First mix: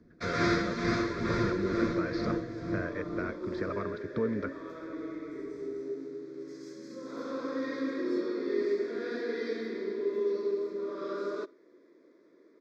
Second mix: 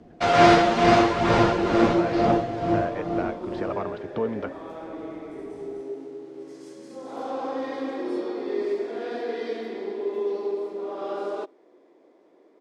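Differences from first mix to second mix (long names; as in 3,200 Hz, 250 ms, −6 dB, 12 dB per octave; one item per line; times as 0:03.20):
first sound +7.5 dB
second sound: send −6.5 dB
master: remove phaser with its sweep stopped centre 2,900 Hz, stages 6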